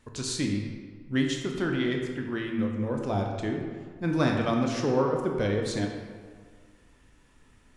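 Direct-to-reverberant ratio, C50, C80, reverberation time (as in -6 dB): 1.0 dB, 3.5 dB, 4.5 dB, 1.7 s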